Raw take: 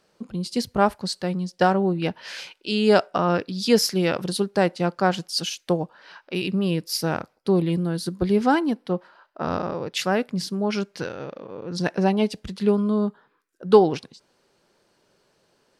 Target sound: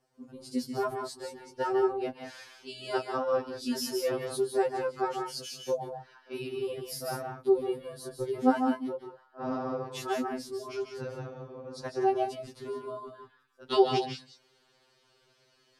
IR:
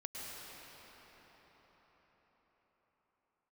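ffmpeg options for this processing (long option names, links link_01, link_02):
-filter_complex "[0:a]asetnsamples=nb_out_samples=441:pad=0,asendcmd='13.08 equalizer g 8',equalizer=frequency=3200:width=0.61:gain=-9.5[link_01];[1:a]atrim=start_sample=2205,atrim=end_sample=6174,asetrate=32193,aresample=44100[link_02];[link_01][link_02]afir=irnorm=-1:irlink=0,afftfilt=real='re*2.45*eq(mod(b,6),0)':imag='im*2.45*eq(mod(b,6),0)':win_size=2048:overlap=0.75"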